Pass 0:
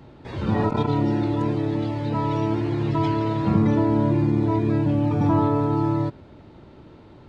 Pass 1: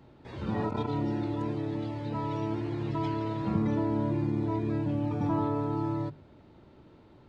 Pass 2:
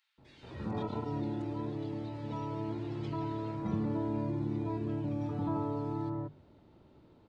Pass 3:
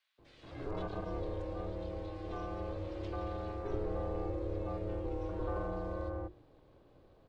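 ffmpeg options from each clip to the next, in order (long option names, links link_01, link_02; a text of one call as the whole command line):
ffmpeg -i in.wav -af "bandreject=frequency=50:width_type=h:width=6,bandreject=frequency=100:width_type=h:width=6,bandreject=frequency=150:width_type=h:width=6,volume=-8.5dB" out.wav
ffmpeg -i in.wav -filter_complex "[0:a]acrossover=split=1800[link_01][link_02];[link_01]adelay=180[link_03];[link_03][link_02]amix=inputs=2:normalize=0,volume=-5dB" out.wav
ffmpeg -i in.wav -filter_complex "[0:a]aeval=exprs='val(0)*sin(2*PI*230*n/s)':channel_layout=same,asplit=2[link_01][link_02];[link_02]asoftclip=type=hard:threshold=-38dB,volume=-9.5dB[link_03];[link_01][link_03]amix=inputs=2:normalize=0,afreqshift=-23,volume=-1.5dB" out.wav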